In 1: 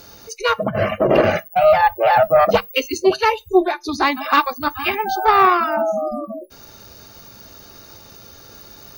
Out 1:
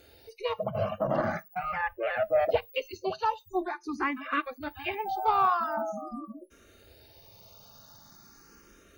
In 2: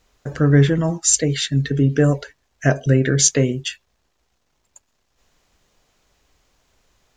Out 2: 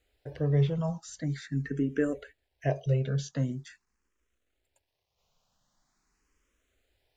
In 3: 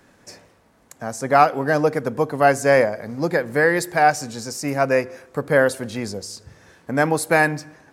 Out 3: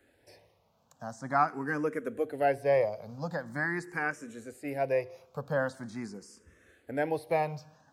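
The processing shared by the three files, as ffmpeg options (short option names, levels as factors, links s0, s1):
-filter_complex "[0:a]acrossover=split=2900[s0][s1];[s1]acompressor=threshold=0.01:ratio=4:attack=1:release=60[s2];[s0][s2]amix=inputs=2:normalize=0,asplit=2[s3][s4];[s4]afreqshift=0.44[s5];[s3][s5]amix=inputs=2:normalize=1,volume=0.355"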